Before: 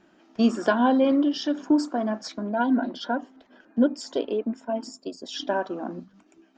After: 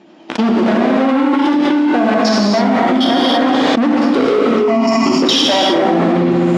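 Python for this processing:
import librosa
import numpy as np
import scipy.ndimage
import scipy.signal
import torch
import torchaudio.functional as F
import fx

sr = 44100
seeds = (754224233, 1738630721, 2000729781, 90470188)

y = fx.env_lowpass_down(x, sr, base_hz=570.0, full_db=-17.5)
y = fx.peak_eq(y, sr, hz=1500.0, db=-12.5, octaves=0.47)
y = fx.leveller(y, sr, passes=5)
y = fx.level_steps(y, sr, step_db=22)
y = fx.fixed_phaser(y, sr, hz=2400.0, stages=8, at=(4.39, 5.12))
y = np.clip(y, -10.0 ** (-20.0 / 20.0), 10.0 ** (-20.0 / 20.0))
y = fx.bandpass_edges(y, sr, low_hz=180.0, high_hz=4800.0)
y = fx.echo_feedback(y, sr, ms=69, feedback_pct=60, wet_db=-15.5)
y = fx.rev_gated(y, sr, seeds[0], gate_ms=350, shape='flat', drr_db=-4.0)
y = fx.env_flatten(y, sr, amount_pct=100)
y = y * 10.0 ** (2.5 / 20.0)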